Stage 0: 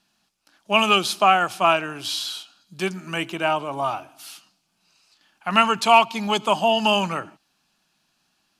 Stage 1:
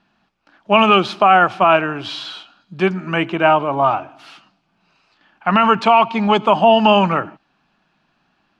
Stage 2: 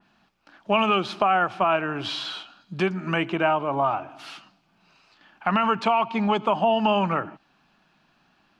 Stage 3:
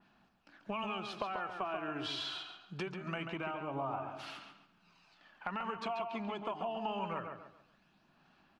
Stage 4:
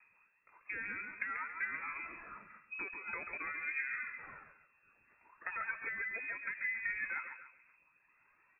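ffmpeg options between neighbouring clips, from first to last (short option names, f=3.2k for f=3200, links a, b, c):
-af "lowpass=2.1k,alimiter=level_in=10.5dB:limit=-1dB:release=50:level=0:latency=1,volume=-1dB"
-af "highshelf=f=5.4k:g=4.5,acompressor=threshold=-25dB:ratio=2,adynamicequalizer=threshold=0.0141:dfrequency=2800:dqfactor=0.7:tfrequency=2800:tqfactor=0.7:attack=5:release=100:ratio=0.375:range=2.5:mode=cutabove:tftype=highshelf"
-filter_complex "[0:a]acompressor=threshold=-28dB:ratio=5,aphaser=in_gain=1:out_gain=1:delay=3:decay=0.37:speed=0.24:type=sinusoidal,asplit=2[a][b];[b]adelay=138,lowpass=f=4k:p=1,volume=-6dB,asplit=2[c][d];[d]adelay=138,lowpass=f=4k:p=1,volume=0.33,asplit=2[e][f];[f]adelay=138,lowpass=f=4k:p=1,volume=0.33,asplit=2[g][h];[h]adelay=138,lowpass=f=4k:p=1,volume=0.33[i];[a][c][e][g][i]amix=inputs=5:normalize=0,volume=-8.5dB"
-af "aphaser=in_gain=1:out_gain=1:delay=3.8:decay=0.47:speed=0.39:type=triangular,lowpass=f=2.3k:t=q:w=0.5098,lowpass=f=2.3k:t=q:w=0.6013,lowpass=f=2.3k:t=q:w=0.9,lowpass=f=2.3k:t=q:w=2.563,afreqshift=-2700,volume=-2.5dB"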